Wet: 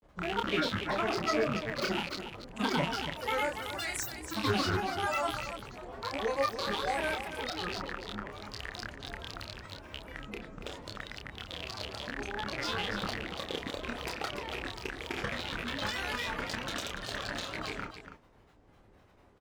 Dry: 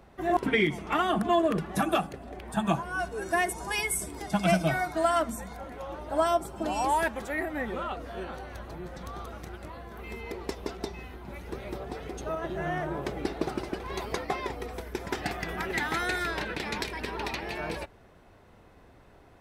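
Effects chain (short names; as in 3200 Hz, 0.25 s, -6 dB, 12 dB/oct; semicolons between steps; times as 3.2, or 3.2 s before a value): rattling part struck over -38 dBFS, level -17 dBFS; grains, pitch spread up and down by 12 st; loudspeakers at several distances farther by 10 m -5 dB, 98 m -9 dB; gain -6 dB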